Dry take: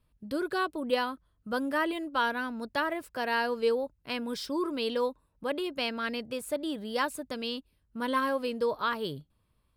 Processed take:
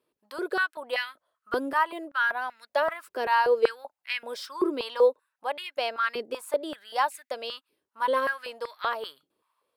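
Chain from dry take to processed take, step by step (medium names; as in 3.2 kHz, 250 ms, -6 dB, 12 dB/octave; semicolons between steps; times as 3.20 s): 1.83–2.42 s: peaking EQ 4.1 kHz -5 dB 2.6 oct; step-sequenced high-pass 5.2 Hz 380–2000 Hz; trim -1 dB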